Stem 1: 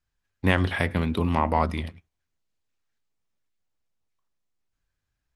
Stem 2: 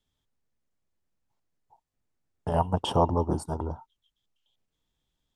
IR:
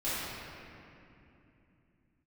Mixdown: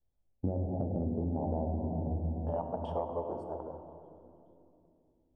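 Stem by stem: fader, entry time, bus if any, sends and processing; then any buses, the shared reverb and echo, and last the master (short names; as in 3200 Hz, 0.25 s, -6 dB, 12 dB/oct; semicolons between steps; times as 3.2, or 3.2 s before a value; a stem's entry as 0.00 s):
-3.0 dB, 0.00 s, send -8.5 dB, steep low-pass 800 Hz 72 dB/oct
-4.0 dB, 0.00 s, send -13.5 dB, band-pass 580 Hz, Q 2.2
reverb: on, RT60 2.8 s, pre-delay 4 ms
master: compressor 12:1, threshold -29 dBFS, peak gain reduction 11.5 dB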